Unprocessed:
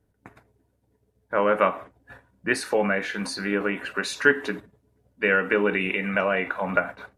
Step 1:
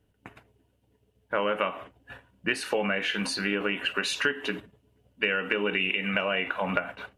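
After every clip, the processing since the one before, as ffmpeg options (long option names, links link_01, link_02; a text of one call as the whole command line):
ffmpeg -i in.wav -af "equalizer=frequency=2900:width=3.5:gain=14.5,acompressor=threshold=-23dB:ratio=6" out.wav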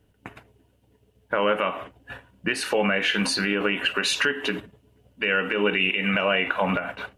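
ffmpeg -i in.wav -af "alimiter=limit=-16.5dB:level=0:latency=1:release=75,volume=6dB" out.wav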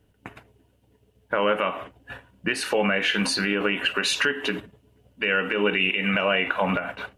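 ffmpeg -i in.wav -af anull out.wav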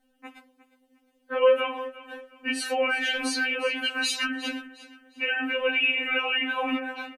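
ffmpeg -i in.wav -af "aecho=1:1:357|714|1071:0.141|0.0452|0.0145,afftfilt=real='re*3.46*eq(mod(b,12),0)':imag='im*3.46*eq(mod(b,12),0)':win_size=2048:overlap=0.75" out.wav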